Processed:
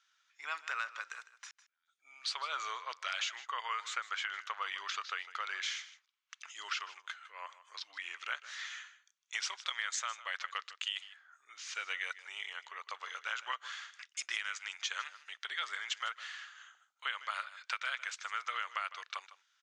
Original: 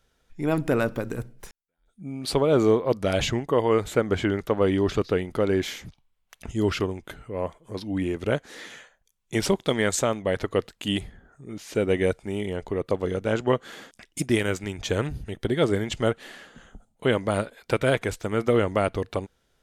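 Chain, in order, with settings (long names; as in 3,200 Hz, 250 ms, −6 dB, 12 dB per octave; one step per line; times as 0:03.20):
elliptic band-pass filter 1,200–6,600 Hz, stop band 70 dB
downward compressor, threshold −33 dBFS, peak gain reduction 9 dB
single-tap delay 155 ms −16 dB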